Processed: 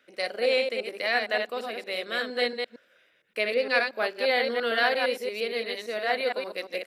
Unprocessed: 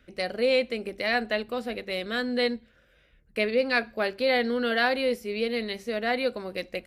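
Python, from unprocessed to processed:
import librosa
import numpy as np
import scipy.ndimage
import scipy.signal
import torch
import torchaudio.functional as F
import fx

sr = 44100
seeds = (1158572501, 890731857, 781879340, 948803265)

y = fx.reverse_delay(x, sr, ms=115, wet_db=-4.0)
y = scipy.signal.sosfilt(scipy.signal.butter(2, 430.0, 'highpass', fs=sr, output='sos'), y)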